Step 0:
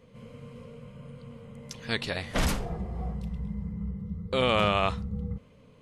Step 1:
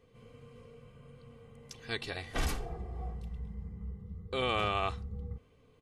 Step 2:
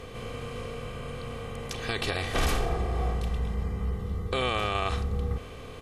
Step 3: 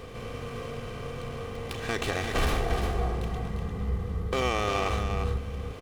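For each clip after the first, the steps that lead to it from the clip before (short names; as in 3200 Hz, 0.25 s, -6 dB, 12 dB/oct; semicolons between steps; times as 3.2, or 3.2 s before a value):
comb 2.6 ms, depth 53%; gain -7.5 dB
per-bin compression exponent 0.6; limiter -23.5 dBFS, peak gain reduction 8.5 dB; gain +6.5 dB
echo 0.349 s -6.5 dB; running maximum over 5 samples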